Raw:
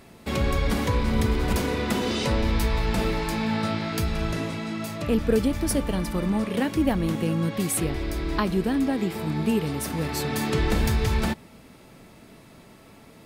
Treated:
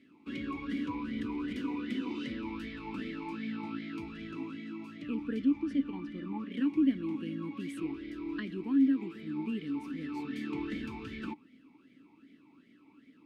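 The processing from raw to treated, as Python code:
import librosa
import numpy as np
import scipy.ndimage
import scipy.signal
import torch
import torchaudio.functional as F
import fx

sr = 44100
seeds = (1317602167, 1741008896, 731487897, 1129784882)

y = fx.air_absorb(x, sr, metres=76.0, at=(5.39, 6.52))
y = fx.vowel_sweep(y, sr, vowels='i-u', hz=2.6)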